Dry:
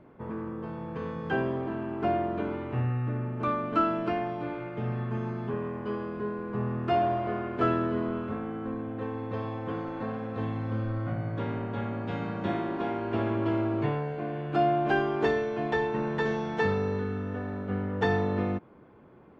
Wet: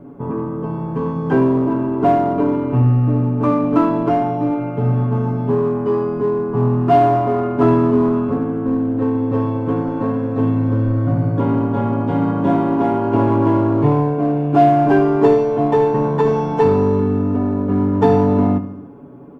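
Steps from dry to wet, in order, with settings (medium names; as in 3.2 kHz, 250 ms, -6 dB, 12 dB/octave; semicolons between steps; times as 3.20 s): ten-band graphic EQ 250 Hz +8 dB, 2 kHz -10 dB, 4 kHz -10 dB; feedback delay 72 ms, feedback 59%, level -13.5 dB; dynamic bell 980 Hz, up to +8 dB, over -50 dBFS, Q 3.6; comb 7.1 ms, depth 79%; in parallel at -8 dB: hard clipper -24.5 dBFS, distortion -8 dB; on the sum: trim +6.5 dB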